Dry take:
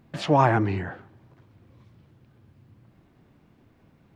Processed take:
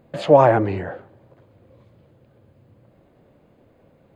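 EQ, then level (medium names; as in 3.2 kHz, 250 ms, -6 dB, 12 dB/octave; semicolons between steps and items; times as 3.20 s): peaking EQ 540 Hz +14 dB 0.71 oct; band-stop 5.6 kHz, Q 5; 0.0 dB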